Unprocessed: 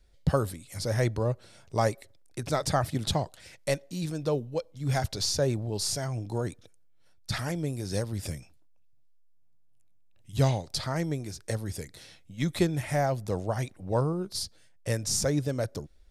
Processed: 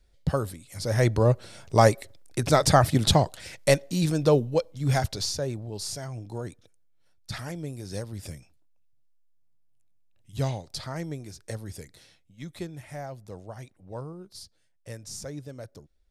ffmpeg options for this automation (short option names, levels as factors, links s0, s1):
-af "volume=2.51,afade=t=in:st=0.78:d=0.53:silence=0.354813,afade=t=out:st=4.42:d=0.99:silence=0.251189,afade=t=out:st=11.91:d=0.41:silence=0.446684"